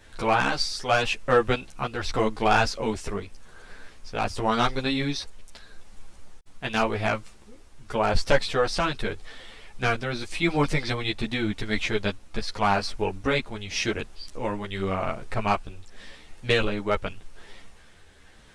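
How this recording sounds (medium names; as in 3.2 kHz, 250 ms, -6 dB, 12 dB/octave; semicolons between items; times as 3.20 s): tremolo triangle 0.87 Hz, depth 35%; a shimmering, thickened sound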